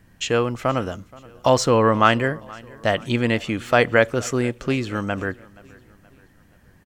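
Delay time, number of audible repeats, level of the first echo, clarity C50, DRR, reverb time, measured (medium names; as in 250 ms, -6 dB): 475 ms, 2, -23.0 dB, no reverb, no reverb, no reverb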